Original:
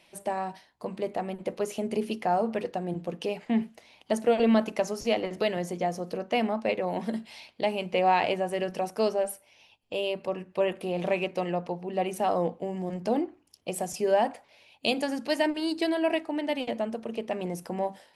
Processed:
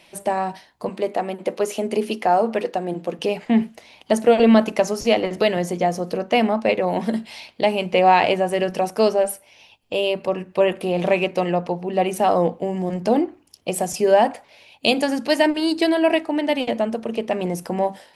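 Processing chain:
0:00.89–0:03.19: high-pass filter 240 Hz 12 dB per octave
level +8.5 dB

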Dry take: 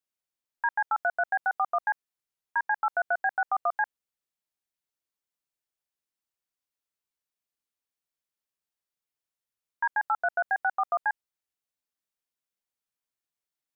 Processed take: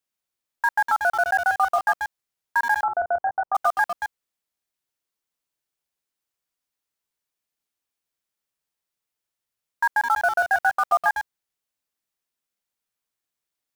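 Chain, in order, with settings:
delay that plays each chunk backwards 131 ms, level −7 dB
in parallel at −12 dB: bit reduction 5 bits
0:02.83–0:03.55: on the sum: low-pass filter 1,100 Hz 24 dB per octave
level +4 dB

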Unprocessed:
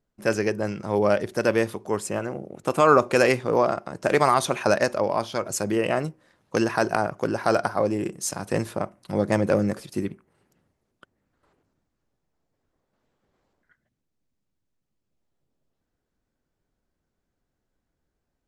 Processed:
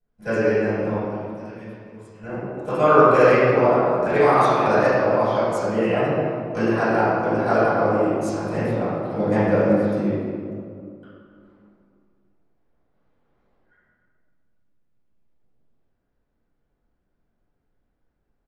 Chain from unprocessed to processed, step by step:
0:00.93–0:02.23: guitar amp tone stack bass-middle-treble 6-0-2
slap from a distant wall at 49 metres, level −16 dB
convolution reverb RT60 2.4 s, pre-delay 3 ms, DRR −17 dB
level −17.5 dB

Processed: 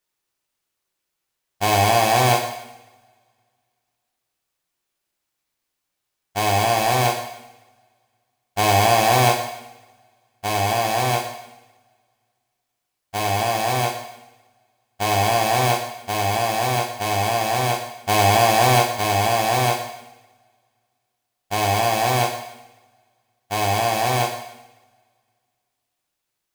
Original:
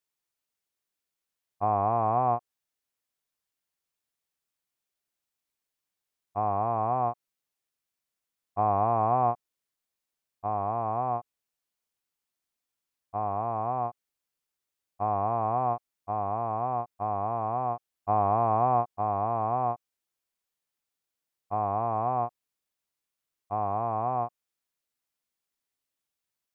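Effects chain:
each half-wave held at its own peak
coupled-rooms reverb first 0.9 s, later 2.3 s, from −25 dB, DRR 1.5 dB
level +3 dB

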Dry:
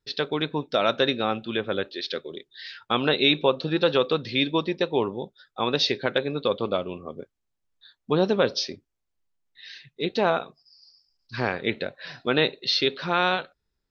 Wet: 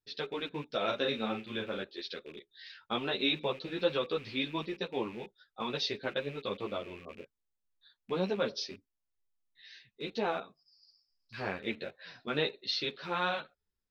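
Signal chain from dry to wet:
loose part that buzzes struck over −41 dBFS, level −29 dBFS
0:00.77–0:01.81: double-tracking delay 36 ms −5.5 dB
string-ensemble chorus
level −7 dB

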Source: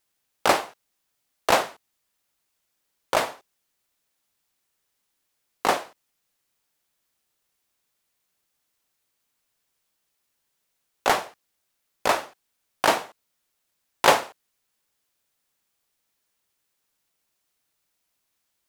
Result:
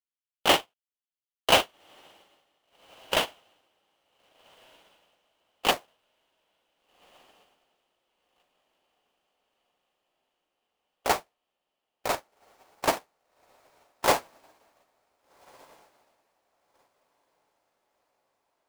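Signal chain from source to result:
each half-wave held at its own peak
brickwall limiter −11 dBFS, peak gain reduction 8 dB
parametric band 3,000 Hz +12.5 dB 0.47 octaves, from 0:05.71 −2.5 dB
feedback delay with all-pass diffusion 1,561 ms, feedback 57%, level −7.5 dB
expander for the loud parts 2.5 to 1, over −37 dBFS

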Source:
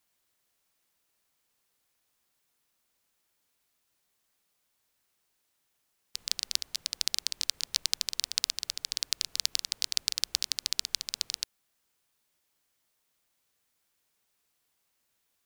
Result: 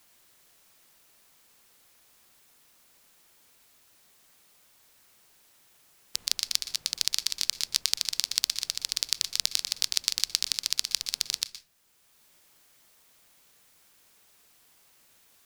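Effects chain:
convolution reverb RT60 0.35 s, pre-delay 117 ms, DRR 13 dB
multiband upward and downward compressor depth 40%
level +3 dB

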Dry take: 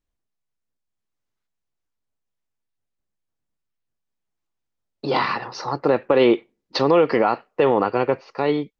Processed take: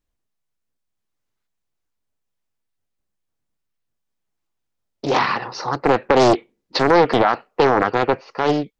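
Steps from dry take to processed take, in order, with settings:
highs frequency-modulated by the lows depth 0.84 ms
level +3 dB

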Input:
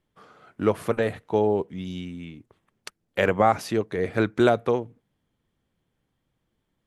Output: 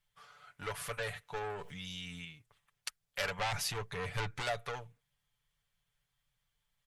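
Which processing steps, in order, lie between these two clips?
0:03.39–0:04.42: low-shelf EQ 380 Hz +9 dB
soft clipping −19.5 dBFS, distortion −7 dB
guitar amp tone stack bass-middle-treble 10-0-10
comb filter 6.9 ms, depth 66%
0:01.61–0:02.25: envelope flattener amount 70%
level +1 dB

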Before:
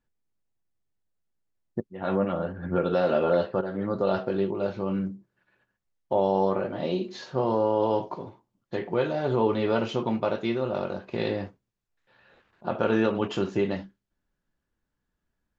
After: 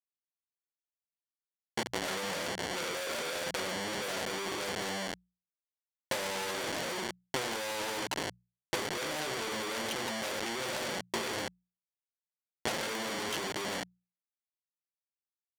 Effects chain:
low-pass that shuts in the quiet parts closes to 590 Hz, open at −22 dBFS
single-tap delay 81 ms −15 dB
convolution reverb, pre-delay 9 ms, DRR 10 dB
comparator with hysteresis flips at −35.5 dBFS
high-frequency loss of the air 110 metres
notch comb filter 1,200 Hz
power curve on the samples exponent 3
transient designer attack +8 dB, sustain +2 dB
spectral tilt +3.5 dB per octave
mains-hum notches 60/120/180 Hz

